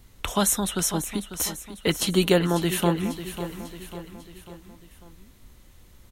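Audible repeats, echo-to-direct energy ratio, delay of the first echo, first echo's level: 4, −10.0 dB, 546 ms, −11.5 dB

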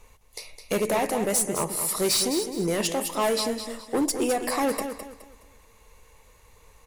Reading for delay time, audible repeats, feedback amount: 210 ms, 3, 31%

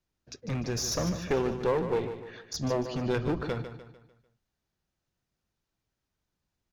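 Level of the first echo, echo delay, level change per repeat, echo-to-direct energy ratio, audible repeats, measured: −10.0 dB, 149 ms, −7.5 dB, −9.0 dB, 4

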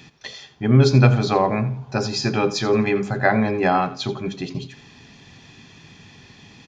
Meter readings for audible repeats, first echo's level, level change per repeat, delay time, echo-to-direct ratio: 2, −15.5 dB, −11.0 dB, 85 ms, −15.0 dB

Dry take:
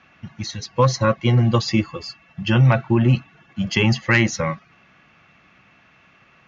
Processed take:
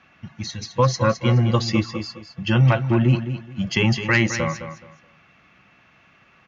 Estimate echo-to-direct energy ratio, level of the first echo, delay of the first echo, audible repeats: −9.5 dB, −10.0 dB, 212 ms, 3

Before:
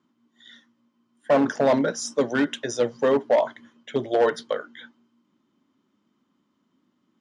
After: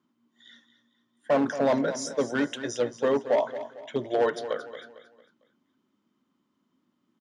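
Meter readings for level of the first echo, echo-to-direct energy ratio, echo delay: −12.5 dB, −12.0 dB, 226 ms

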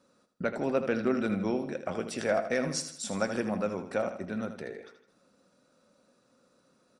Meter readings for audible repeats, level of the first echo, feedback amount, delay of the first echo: 4, −10.0 dB, 46%, 79 ms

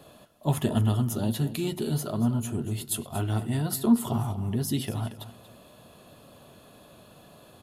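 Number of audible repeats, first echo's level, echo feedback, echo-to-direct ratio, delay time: 2, −14.0 dB, 21%, −14.0 dB, 234 ms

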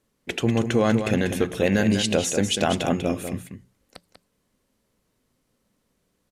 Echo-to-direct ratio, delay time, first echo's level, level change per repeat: −8.0 dB, 193 ms, −8.0 dB, repeats not evenly spaced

